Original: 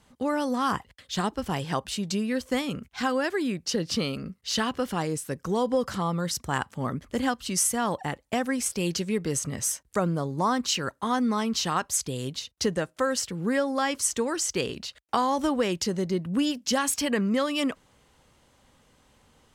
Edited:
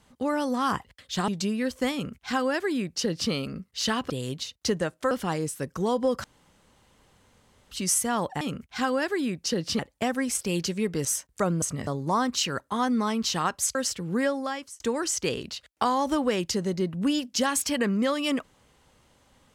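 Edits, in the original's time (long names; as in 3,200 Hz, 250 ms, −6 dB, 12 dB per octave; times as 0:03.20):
0:01.28–0:01.98: remove
0:02.63–0:04.01: duplicate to 0:08.10
0:05.93–0:07.40: fill with room tone
0:09.36–0:09.61: move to 0:10.18
0:12.06–0:13.07: move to 0:04.80
0:13.57–0:14.12: fade out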